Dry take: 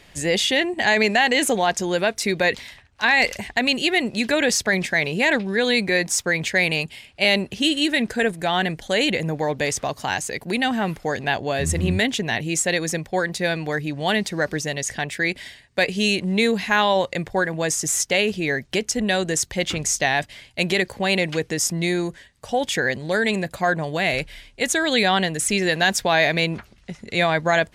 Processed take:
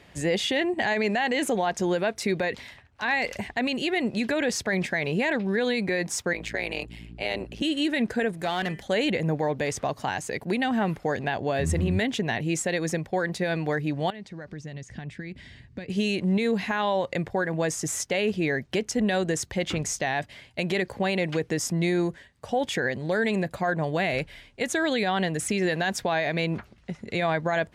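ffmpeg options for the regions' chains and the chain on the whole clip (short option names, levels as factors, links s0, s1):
-filter_complex "[0:a]asettb=1/sr,asplit=3[s0][s1][s2];[s0]atrim=end=6.334[s3];[s1]atrim=start=6.33:end=7.62,asetpts=PTS-STARTPTS,afade=t=in:d=0.004:c=qsin,afade=t=out:st=1.286:d=0.004:c=qsin,highpass=f=250:w=0.5412,highpass=f=250:w=1.3066,aeval=exprs='val(0)+0.0158*(sin(2*PI*60*n/s)+sin(2*PI*2*60*n/s)/2+sin(2*PI*3*60*n/s)/3+sin(2*PI*4*60*n/s)/4+sin(2*PI*5*60*n/s)/5)':c=same,tremolo=f=110:d=0.889[s4];[s2]atrim=start=7.616[s5];[s3][s4]acrossfade=d=0.004:c1=hsin:c2=qsin[s6];[s6][s5]acrossfade=d=0.004:c1=qsin:c2=hsin,asettb=1/sr,asplit=3[s7][s8][s9];[s7]atrim=end=8.374[s10];[s8]atrim=start=8.37:end=8.83,asetpts=PTS-STARTPTS,afade=t=in:d=0.004:c=qsin,afade=t=out:st=0.456:d=0.004:c=qsin,aeval=exprs='if(lt(val(0),0),0.447*val(0),val(0))':c=same,highshelf=f=3900:g=7,bandreject=f=198.7:t=h:w=4,bandreject=f=397.4:t=h:w=4,bandreject=f=596.1:t=h:w=4,bandreject=f=794.8:t=h:w=4,bandreject=f=993.5:t=h:w=4,bandreject=f=1192.2:t=h:w=4,bandreject=f=1390.9:t=h:w=4,bandreject=f=1589.6:t=h:w=4,bandreject=f=1788.3:t=h:w=4,bandreject=f=1987:t=h:w=4,bandreject=f=2185.7:t=h:w=4,bandreject=f=2384.4:t=h:w=4,bandreject=f=2583.1:t=h:w=4,bandreject=f=2781.8:t=h:w=4,bandreject=f=2980.5:t=h:w=4,bandreject=f=3179.2:t=h:w=4[s11];[s9]atrim=start=8.826[s12];[s10][s11]acrossfade=d=0.004:c1=hsin:c2=qsin[s13];[s13][s12]acrossfade=d=0.004:c1=qsin:c2=hsin,asettb=1/sr,asplit=3[s14][s15][s16];[s14]atrim=end=14.104[s17];[s15]atrim=start=14.1:end=15.9,asetpts=PTS-STARTPTS,afade=t=in:d=0.004:c=qsin,afade=t=out:st=1.796:d=0.004:c=qsin,acompressor=threshold=0.00891:ratio=3:attack=3.2:release=140:knee=1:detection=peak,lowpass=7400,asubboost=boost=11.5:cutoff=250[s18];[s16]atrim=start=15.896[s19];[s17][s18]acrossfade=d=0.004:c1=hsin:c2=qsin[s20];[s20][s19]acrossfade=d=0.004:c1=qsin:c2=hsin,highpass=58,highshelf=f=2600:g=-9.5,alimiter=limit=0.158:level=0:latency=1:release=111"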